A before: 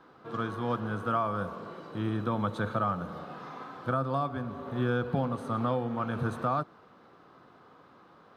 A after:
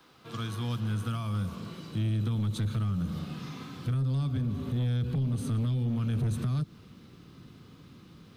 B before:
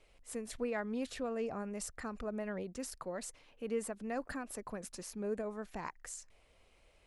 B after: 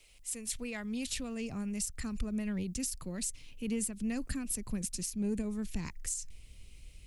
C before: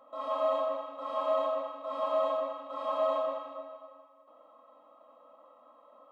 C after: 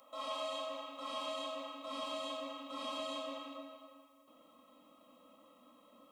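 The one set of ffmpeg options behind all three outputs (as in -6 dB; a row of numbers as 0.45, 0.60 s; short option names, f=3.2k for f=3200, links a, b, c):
-filter_complex "[0:a]acrossover=split=190|3000[a][b][c];[b]acompressor=threshold=-32dB:ratio=6[d];[a][d][c]amix=inputs=3:normalize=0,asubboost=boost=9:cutoff=240,asoftclip=type=tanh:threshold=-19dB,aexciter=amount=1.8:drive=9.1:freq=2.2k,equalizer=f=610:w=0.47:g=-5.5,alimiter=limit=-24dB:level=0:latency=1:release=147"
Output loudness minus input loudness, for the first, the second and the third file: +1.0, +4.5, -9.5 LU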